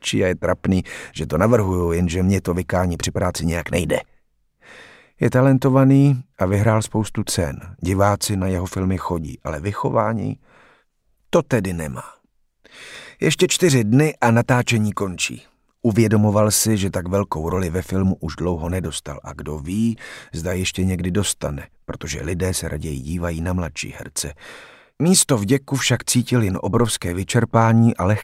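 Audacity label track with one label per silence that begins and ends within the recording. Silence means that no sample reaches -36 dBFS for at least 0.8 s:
10.360000	11.330000	silence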